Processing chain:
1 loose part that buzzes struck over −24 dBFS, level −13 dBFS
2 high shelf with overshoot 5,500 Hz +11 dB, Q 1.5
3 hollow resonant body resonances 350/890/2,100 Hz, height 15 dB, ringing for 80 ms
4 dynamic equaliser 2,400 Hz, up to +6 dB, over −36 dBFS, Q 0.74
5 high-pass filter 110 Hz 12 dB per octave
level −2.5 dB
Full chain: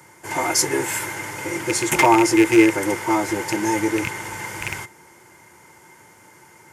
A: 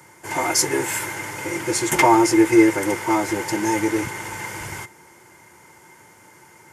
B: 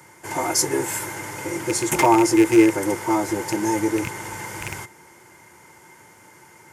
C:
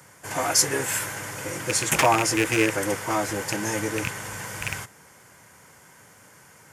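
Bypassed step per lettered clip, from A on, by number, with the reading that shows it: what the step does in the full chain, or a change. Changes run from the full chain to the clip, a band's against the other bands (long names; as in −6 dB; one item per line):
1, change in momentary loudness spread +1 LU
4, change in momentary loudness spread +2 LU
3, 250 Hz band −8.0 dB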